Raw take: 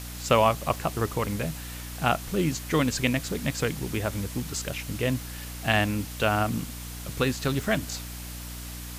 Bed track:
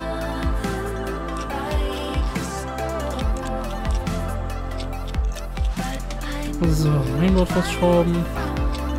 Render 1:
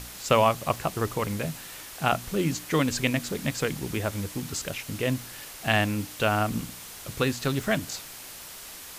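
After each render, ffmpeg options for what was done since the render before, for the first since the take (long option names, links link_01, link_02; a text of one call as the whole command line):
ffmpeg -i in.wav -af "bandreject=frequency=60:width_type=h:width=4,bandreject=frequency=120:width_type=h:width=4,bandreject=frequency=180:width_type=h:width=4,bandreject=frequency=240:width_type=h:width=4,bandreject=frequency=300:width_type=h:width=4" out.wav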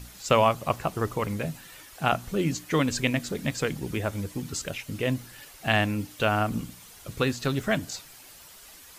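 ffmpeg -i in.wav -af "afftdn=noise_reduction=9:noise_floor=-43" out.wav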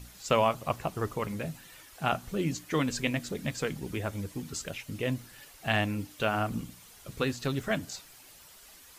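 ffmpeg -i in.wav -af "flanger=delay=0.3:depth=4.8:regen=-74:speed=1.2:shape=sinusoidal" out.wav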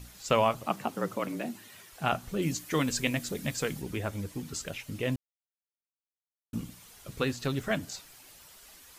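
ffmpeg -i in.wav -filter_complex "[0:a]asettb=1/sr,asplit=3[link_01][link_02][link_03];[link_01]atrim=end=0.664[link_04];[link_02]atrim=start=0.66:end=1.92,asetpts=PTS-STARTPTS,afade=type=in:duration=0.004:curve=qsin,afade=type=out:start_time=1.256:duration=0.004:curve=qsin,afreqshift=77[link_05];[link_03]atrim=start=1.916[link_06];[link_04][link_05]acrossfade=duration=0.004:curve1=hsin:curve2=qsin[link_07];[link_07][link_06]acrossfade=duration=0.004:curve1=qsin:curve2=hsin,asettb=1/sr,asplit=3[link_08][link_09][link_10];[link_08]atrim=end=2.424[link_11];[link_09]atrim=start=2.42:end=3.82,asetpts=PTS-STARTPTS,afade=type=in:duration=0.004:curve=qsin,afade=type=out:start_time=1.396:duration=0.004:curve=qsin,highshelf=frequency=5900:gain=7.5[link_12];[link_10]atrim=start=3.816[link_13];[link_11][link_12]acrossfade=duration=0.004:curve1=hsin:curve2=qsin[link_14];[link_14][link_13]acrossfade=duration=0.004:curve1=qsin:curve2=hsin,asplit=3[link_15][link_16][link_17];[link_15]atrim=end=5.16,asetpts=PTS-STARTPTS,afade=type=out:start_time=5.156:duration=0.004:curve=hsin[link_18];[link_16]atrim=start=5.16:end=6.53,asetpts=PTS-STARTPTS,volume=0[link_19];[link_17]atrim=start=6.53,asetpts=PTS-STARTPTS,afade=type=in:duration=0.004:curve=hsin[link_20];[link_18][link_19][link_20]concat=n=3:v=0:a=1" out.wav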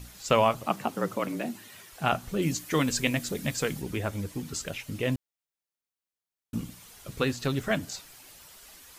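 ffmpeg -i in.wav -af "volume=2.5dB" out.wav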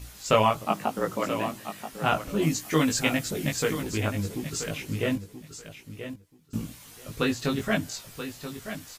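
ffmpeg -i in.wav -filter_complex "[0:a]asplit=2[link_01][link_02];[link_02]adelay=19,volume=-2.5dB[link_03];[link_01][link_03]amix=inputs=2:normalize=0,asplit=2[link_04][link_05];[link_05]aecho=0:1:981|1962:0.299|0.0537[link_06];[link_04][link_06]amix=inputs=2:normalize=0" out.wav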